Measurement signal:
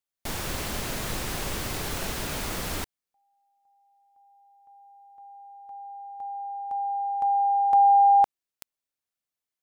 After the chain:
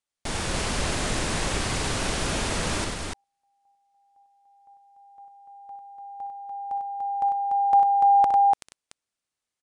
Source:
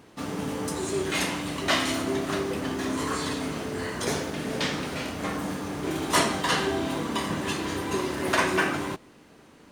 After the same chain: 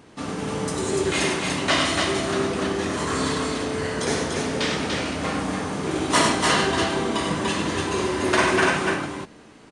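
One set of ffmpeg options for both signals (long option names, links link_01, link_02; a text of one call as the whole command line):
ffmpeg -i in.wav -filter_complex "[0:a]asplit=2[link_01][link_02];[link_02]aecho=0:1:63|98|292:0.316|0.501|0.668[link_03];[link_01][link_03]amix=inputs=2:normalize=0,aresample=22050,aresample=44100,volume=2.5dB" out.wav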